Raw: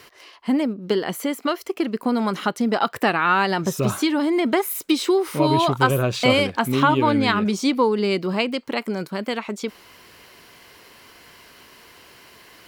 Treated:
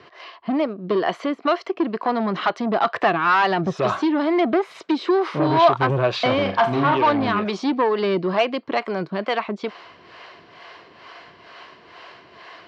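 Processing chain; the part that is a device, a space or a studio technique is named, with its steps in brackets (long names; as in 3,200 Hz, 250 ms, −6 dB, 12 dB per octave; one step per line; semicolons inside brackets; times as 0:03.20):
guitar amplifier with harmonic tremolo (two-band tremolo in antiphase 2.2 Hz, depth 70%, crossover 420 Hz; soft clipping −21 dBFS, distortion −11 dB; loudspeaker in its box 99–4,400 Hz, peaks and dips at 240 Hz −4 dB, 350 Hz +3 dB, 680 Hz +9 dB, 1,100 Hz +7 dB, 1,700 Hz +3 dB)
0:06.41–0:06.97: flutter between parallel walls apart 7 metres, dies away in 0.31 s
level +5 dB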